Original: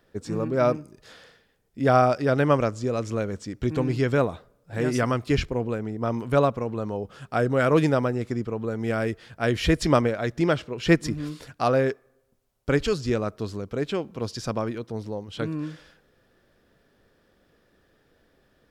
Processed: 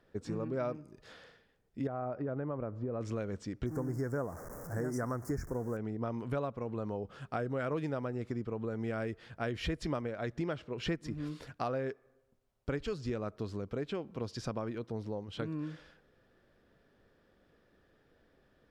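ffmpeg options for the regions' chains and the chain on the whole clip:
-filter_complex "[0:a]asettb=1/sr,asplit=3[s0][s1][s2];[s0]atrim=end=1.874[s3];[s1]atrim=start=1.87:end=3.01,asetpts=PTS-STARTPTS,afade=t=in:d=0.004:c=qsin,afade=t=out:st=1.136:d=0.004:c=qsin,lowpass=1200,acompressor=threshold=0.0501:ratio=3:attack=3.2:release=140:knee=1:detection=peak[s4];[s2]atrim=start=3.006[s5];[s3][s4]acrossfade=d=0.004:c1=hsin:c2=qsin[s6];[s6][s5]acrossfade=d=0.004:c1=qsin:c2=hsin,asettb=1/sr,asplit=3[s7][s8][s9];[s7]atrim=end=3.664[s10];[s8]atrim=start=3.66:end=5.77,asetpts=PTS-STARTPTS,afade=t=in:d=0.004:c=qsin,afade=t=out:st=2.106:d=0.004:c=qsin,aeval=exprs='val(0)+0.5*0.0158*sgn(val(0))':c=same,asuperstop=centerf=3200:order=8:qfactor=0.83,aemphasis=mode=production:type=50kf[s11];[s9]atrim=start=5.766[s12];[s10][s11]acrossfade=d=0.004:c1=hsin:c2=qsin[s13];[s13][s12]acrossfade=d=0.004:c1=qsin:c2=hsin,aemphasis=mode=reproduction:type=cd,acompressor=threshold=0.0355:ratio=4,volume=0.596"

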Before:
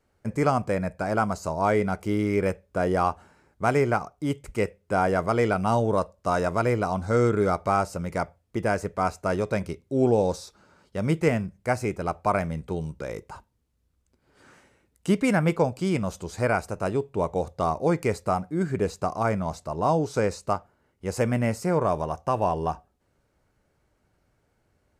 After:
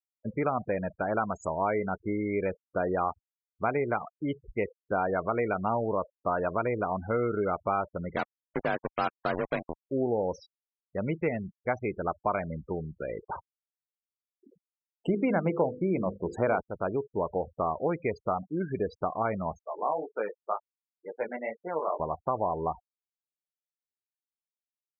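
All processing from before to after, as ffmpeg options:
-filter_complex "[0:a]asettb=1/sr,asplit=3[s0][s1][s2];[s0]atrim=end=8.164[s3];[s1]atrim=start=8.16:end=9.81,asetpts=PTS-STARTPTS,afade=t=in:d=0.004:c=qsin,afade=t=out:st=1.646:d=0.004:c=qsin,afreqshift=39,acrusher=bits=3:mix=0:aa=0.5[s4];[s2]atrim=start=9.806[s5];[s3][s4]acrossfade=d=0.004:c1=hsin:c2=qsin[s6];[s6][s5]acrossfade=d=0.004:c1=qsin:c2=hsin,asettb=1/sr,asplit=3[s7][s8][s9];[s7]atrim=end=13.234[s10];[s8]atrim=start=13.23:end=16.61,asetpts=PTS-STARTPTS,afade=t=in:d=0.004:c=qsin,afade=t=out:st=3.376:d=0.004:c=qsin,equalizer=f=350:w=0.32:g=10,bandreject=f=50:t=h:w=6,bandreject=f=100:t=h:w=6,bandreject=f=150:t=h:w=6,bandreject=f=200:t=h:w=6,bandreject=f=250:t=h:w=6,bandreject=f=300:t=h:w=6,bandreject=f=350:t=h:w=6,bandreject=f=400:t=h:w=6,bandreject=f=450:t=h:w=6,bandreject=f=500:t=h:w=6[s11];[s9]atrim=start=16.606[s12];[s10][s11]acrossfade=d=0.004:c1=hsin:c2=qsin[s13];[s13][s12]acrossfade=d=0.004:c1=qsin:c2=hsin,asettb=1/sr,asplit=3[s14][s15][s16];[s14]atrim=end=19.634[s17];[s15]atrim=start=19.63:end=22,asetpts=PTS-STARTPTS,afade=t=in:d=0.004:c=qsin,afade=t=out:st=2.366:d=0.004:c=qsin,highpass=440,lowpass=2900,flanger=delay=17:depth=3.3:speed=2[s18];[s16]atrim=start=21.996[s19];[s17][s18]acrossfade=d=0.004:c1=hsin:c2=qsin[s20];[s20][s19]acrossfade=d=0.004:c1=qsin:c2=hsin,acompressor=threshold=0.0631:ratio=3,afftfilt=real='re*gte(hypot(re,im),0.0251)':imag='im*gte(hypot(re,im),0.0251)':win_size=1024:overlap=0.75,equalizer=f=95:t=o:w=2.4:g=-7"

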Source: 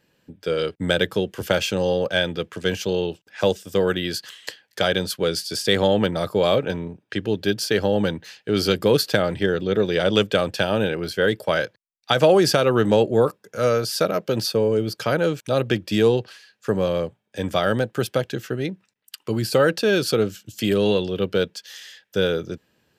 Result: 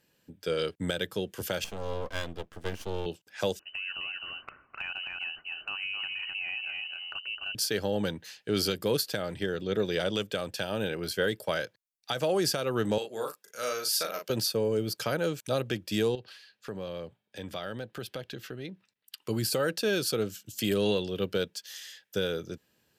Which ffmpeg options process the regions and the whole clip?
-filter_complex "[0:a]asettb=1/sr,asplit=3[s0][s1][s2];[s0]atrim=end=1.644[s3];[s1]atrim=start=1.64:end=3.06,asetpts=PTS-STARTPTS,afade=t=in:d=0.004:c=qsin,afade=t=out:st=1.416:d=0.004:c=qsin,bandreject=f=580:w=9.3,aeval=exprs='max(val(0),0)':c=same,highshelf=f=2500:g=-11[s4];[s2]atrim=start=3.056[s5];[s3][s4]acrossfade=d=0.004:c1=hsin:c2=qsin[s6];[s6][s5]acrossfade=d=0.004:c1=qsin:c2=hsin,asettb=1/sr,asplit=3[s7][s8][s9];[s7]atrim=end=3.594[s10];[s8]atrim=start=3.59:end=7.55,asetpts=PTS-STARTPTS,afade=t=in:d=0.004:c=qsin,afade=t=out:st=3.956:d=0.004:c=qsin,aecho=1:1:259:0.447,atrim=end_sample=174636,lowpass=f=2600:t=q:w=0.5098,lowpass=f=2600:t=q:w=0.6013,lowpass=f=2600:t=q:w=0.9,lowpass=f=2600:t=q:w=2.563,afreqshift=-3100,acompressor=threshold=0.0282:ratio=3:attack=3.2:release=140:knee=1:detection=peak[s11];[s9]atrim=start=7.546[s12];[s10][s11]acrossfade=d=0.004:c1=hsin:c2=qsin[s13];[s13][s12]acrossfade=d=0.004:c1=qsin:c2=hsin,asettb=1/sr,asplit=3[s14][s15][s16];[s14]atrim=end=12.984[s17];[s15]atrim=start=12.98:end=14.3,asetpts=PTS-STARTPTS,afade=t=in:d=0.004:c=qsin,afade=t=out:st=1.316:d=0.004:c=qsin,highpass=f=1300:p=1,asplit=2[s18][s19];[s19]adelay=37,volume=0.562[s20];[s18][s20]amix=inputs=2:normalize=0,atrim=end_sample=58212[s21];[s16]atrim=start=14.296[s22];[s17][s21]acrossfade=d=0.004:c1=hsin:c2=qsin[s23];[s23][s22]acrossfade=d=0.004:c1=qsin:c2=hsin,asettb=1/sr,asplit=3[s24][s25][s26];[s24]atrim=end=16.154[s27];[s25]atrim=start=16.15:end=19.23,asetpts=PTS-STARTPTS,afade=t=in:d=0.004:c=qsin,afade=t=out:st=3.076:d=0.004:c=qsin,highshelf=f=5300:t=q:w=1.5:g=-6.5,acompressor=threshold=0.02:ratio=2:attack=3.2:release=140:knee=1:detection=peak[s28];[s26]atrim=start=19.226[s29];[s27][s28]acrossfade=d=0.004:c1=hsin:c2=qsin[s30];[s30][s29]acrossfade=d=0.004:c1=qsin:c2=hsin,aemphasis=mode=production:type=cd,alimiter=limit=0.299:level=0:latency=1:release=479,volume=0.473"

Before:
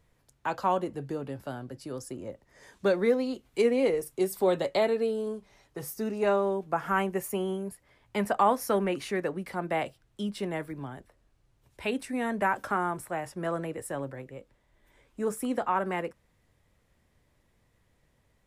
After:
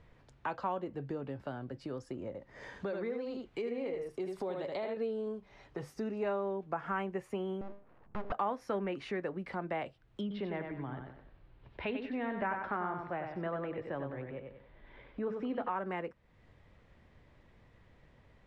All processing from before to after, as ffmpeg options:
-filter_complex "[0:a]asettb=1/sr,asplit=3[s0][s1][s2];[s0]atrim=end=2.274[s3];[s1]atrim=start=2.27:end=4.97,asetpts=PTS-STARTPTS,afade=t=in:d=0.004:c=qsin,afade=t=out:st=2.696:d=0.004:c=qsin,aecho=1:1:76:0.531,atrim=end_sample=119070,acompressor=threshold=0.02:ratio=2:attack=3.2:release=140:knee=1:detection=peak[s4];[s2]atrim=start=4.966[s5];[s3][s4]acrossfade=d=0.004:c1=hsin:c2=qsin[s6];[s6][s5]acrossfade=d=0.004:c1=qsin:c2=hsin,asettb=1/sr,asplit=3[s7][s8][s9];[s7]atrim=end=7.614[s10];[s8]atrim=start=7.61:end=8.32,asetpts=PTS-STARTPTS,afade=t=in:d=0.004:c=qsin,afade=t=out:st=0.706:d=0.004:c=qsin,lowpass=f=1100:w=0.5412,lowpass=f=1100:w=1.3066,bandreject=f=50:t=h:w=6,bandreject=f=100:t=h:w=6,bandreject=f=150:t=h:w=6,bandreject=f=200:t=h:w=6,bandreject=f=250:t=h:w=6,bandreject=f=300:t=h:w=6,bandreject=f=350:t=h:w=6,bandreject=f=400:t=h:w=6,aeval=exprs='abs(val(0))':c=same[s11];[s9]atrim=start=8.316[s12];[s10][s11]acrossfade=d=0.004:c1=hsin:c2=qsin[s13];[s13][s12]acrossfade=d=0.004:c1=qsin:c2=hsin,asettb=1/sr,asplit=3[s14][s15][s16];[s14]atrim=end=10.214[s17];[s15]atrim=start=10.21:end=15.69,asetpts=PTS-STARTPTS,afade=t=in:d=0.004:c=qsin,afade=t=out:st=5.476:d=0.004:c=qsin,lowpass=f=4300:w=0.5412,lowpass=f=4300:w=1.3066,aecho=1:1:94|188|282|376:0.473|0.137|0.0398|0.0115,atrim=end_sample=241668[s18];[s16]atrim=start=15.686[s19];[s17][s18]acrossfade=d=0.004:c1=hsin:c2=qsin[s20];[s20][s19]acrossfade=d=0.004:c1=qsin:c2=hsin,lowpass=3200,acompressor=threshold=0.00251:ratio=2,volume=2.24"

